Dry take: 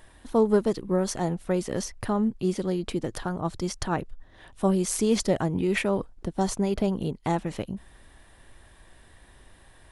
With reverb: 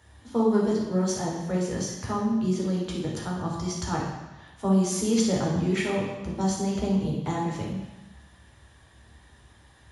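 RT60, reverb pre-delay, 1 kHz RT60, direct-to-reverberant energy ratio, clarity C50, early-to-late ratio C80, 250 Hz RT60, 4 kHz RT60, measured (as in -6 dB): 1.0 s, 3 ms, 1.1 s, -3.5 dB, 1.5 dB, 4.5 dB, 1.0 s, 1.1 s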